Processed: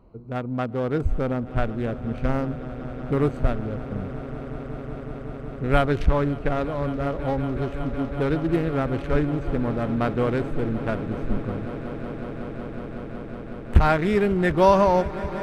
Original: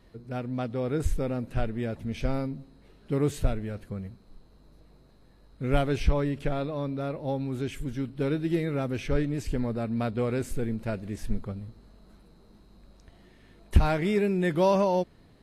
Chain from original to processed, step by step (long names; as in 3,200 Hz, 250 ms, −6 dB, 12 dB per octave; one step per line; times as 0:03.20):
adaptive Wiener filter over 25 samples
parametric band 1,300 Hz +8 dB 1.5 octaves
on a send: echo that builds up and dies away 185 ms, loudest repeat 8, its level −18 dB
on the sum: level +3.5 dB